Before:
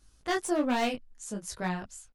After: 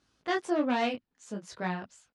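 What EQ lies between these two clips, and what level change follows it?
BPF 150–4300 Hz; 0.0 dB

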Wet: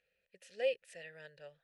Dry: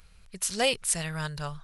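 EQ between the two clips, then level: vowel filter e; -3.5 dB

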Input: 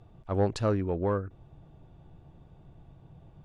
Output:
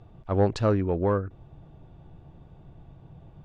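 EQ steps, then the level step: air absorption 59 m; +4.0 dB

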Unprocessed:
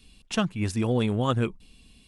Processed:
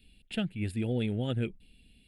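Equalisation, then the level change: fixed phaser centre 2600 Hz, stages 4; -5.0 dB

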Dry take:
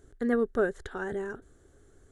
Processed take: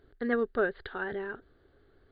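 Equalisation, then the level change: low shelf 340 Hz -6 dB; dynamic EQ 2600 Hz, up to +5 dB, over -48 dBFS, Q 0.8; brick-wall FIR low-pass 4800 Hz; 0.0 dB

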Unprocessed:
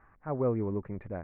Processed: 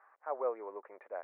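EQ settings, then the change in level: HPF 510 Hz 24 dB/oct; band-pass 820 Hz, Q 0.59; +1.0 dB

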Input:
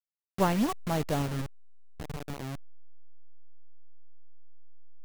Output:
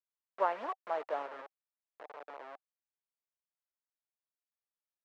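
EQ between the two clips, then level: HPF 550 Hz 24 dB/oct; LPF 1400 Hz 12 dB/oct; notch 770 Hz, Q 12; 0.0 dB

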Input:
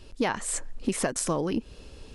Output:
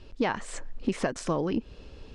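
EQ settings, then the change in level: air absorption 120 m; 0.0 dB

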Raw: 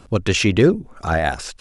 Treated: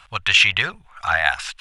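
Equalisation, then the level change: passive tone stack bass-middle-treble 10-0-10; band shelf 1600 Hz +14 dB 2.7 oct; -2.0 dB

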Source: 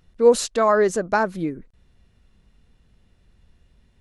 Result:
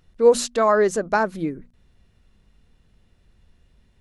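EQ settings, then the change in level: notches 60/120/180/240 Hz; 0.0 dB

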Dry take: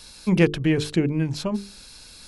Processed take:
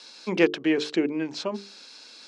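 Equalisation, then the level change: HPF 270 Hz 24 dB/oct; LPF 6400 Hz 24 dB/oct; 0.0 dB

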